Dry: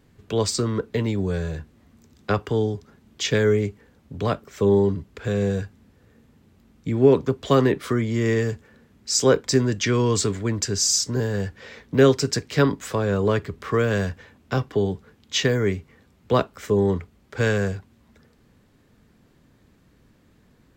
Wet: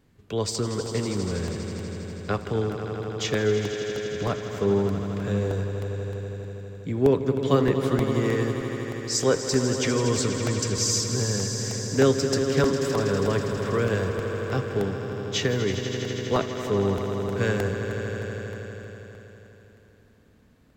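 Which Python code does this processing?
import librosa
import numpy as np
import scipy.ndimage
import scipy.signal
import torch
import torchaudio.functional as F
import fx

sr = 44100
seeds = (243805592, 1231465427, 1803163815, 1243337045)

y = fx.echo_swell(x, sr, ms=81, loudest=5, wet_db=-11.5)
y = fx.buffer_crackle(y, sr, first_s=0.55, period_s=0.31, block=64, kind='repeat')
y = F.gain(torch.from_numpy(y), -4.5).numpy()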